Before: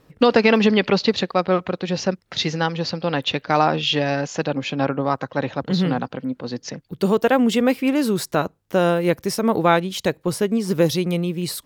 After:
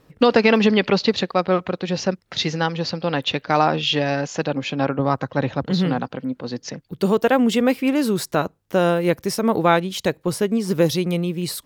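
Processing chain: 4.99–5.66 s: bass shelf 160 Hz +9 dB

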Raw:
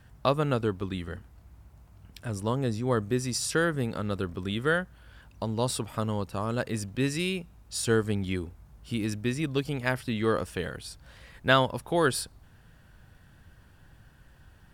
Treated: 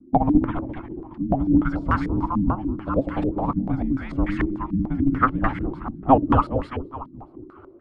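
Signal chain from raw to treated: peaking EQ 200 Hz -5.5 dB 0.65 oct; de-hum 263.3 Hz, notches 32; vibrato 0.76 Hz 11 cents; time stretch by phase-locked vocoder 0.53×; feedback delay 209 ms, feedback 53%, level -6.5 dB; vibrato 8.4 Hz 63 cents; frequency shift -410 Hz; step-sequenced low-pass 6.8 Hz 230–1800 Hz; trim +5 dB

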